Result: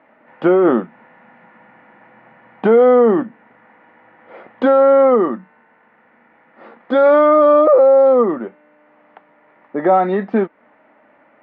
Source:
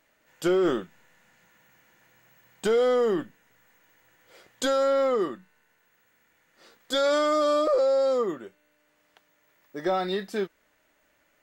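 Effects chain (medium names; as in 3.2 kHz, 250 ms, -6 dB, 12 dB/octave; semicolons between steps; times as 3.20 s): peaking EQ 740 Hz +3 dB 2.3 oct; in parallel at +2 dB: compression, threshold -34 dBFS, peak gain reduction 15.5 dB; on the sum: cabinet simulation 180–2000 Hz, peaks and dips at 230 Hz +9 dB, 390 Hz -3 dB, 830 Hz +4 dB, 1.6 kHz -5 dB; trim +8 dB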